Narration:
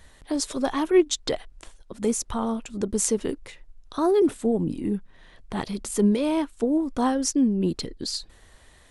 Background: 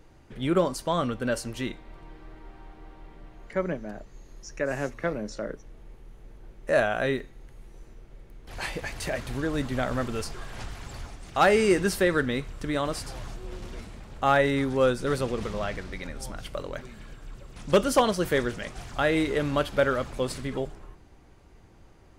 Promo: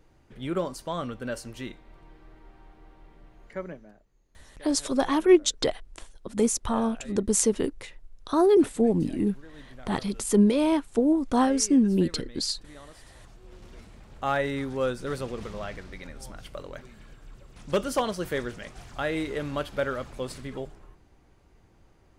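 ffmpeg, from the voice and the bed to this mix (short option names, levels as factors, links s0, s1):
-filter_complex "[0:a]adelay=4350,volume=1.12[s0];[1:a]volume=3.16,afade=t=out:st=3.47:d=0.54:silence=0.177828,afade=t=in:st=12.98:d=1.17:silence=0.16788[s1];[s0][s1]amix=inputs=2:normalize=0"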